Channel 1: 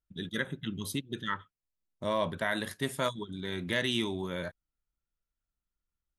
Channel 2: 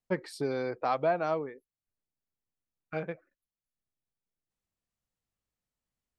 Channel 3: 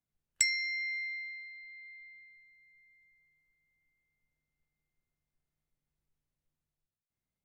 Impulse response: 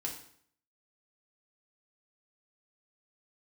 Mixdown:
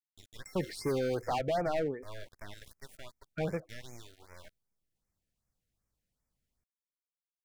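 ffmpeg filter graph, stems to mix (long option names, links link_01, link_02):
-filter_complex "[0:a]highpass=630,aeval=exprs='max(val(0),0)':channel_layout=same,volume=-9.5dB,asplit=2[link_01][link_02];[1:a]asoftclip=type=hard:threshold=-30.5dB,adelay=450,volume=2dB[link_03];[2:a]acrusher=bits=7:dc=4:mix=0:aa=0.000001,adelay=50,volume=-9dB[link_04];[link_02]apad=whole_len=330577[link_05];[link_04][link_05]sidechaincompress=threshold=-54dB:ratio=8:attack=21:release=883[link_06];[link_01][link_06]amix=inputs=2:normalize=0,aeval=exprs='val(0)*gte(abs(val(0)),0.00282)':channel_layout=same,alimiter=level_in=8.5dB:limit=-24dB:level=0:latency=1:release=196,volume=-8.5dB,volume=0dB[link_07];[link_03][link_07]amix=inputs=2:normalize=0,lowshelf=frequency=180:gain=7.5,afftfilt=real='re*(1-between(b*sr/1024,910*pow(3600/910,0.5+0.5*sin(2*PI*2.6*pts/sr))/1.41,910*pow(3600/910,0.5+0.5*sin(2*PI*2.6*pts/sr))*1.41))':imag='im*(1-between(b*sr/1024,910*pow(3600/910,0.5+0.5*sin(2*PI*2.6*pts/sr))/1.41,910*pow(3600/910,0.5+0.5*sin(2*PI*2.6*pts/sr))*1.41))':win_size=1024:overlap=0.75"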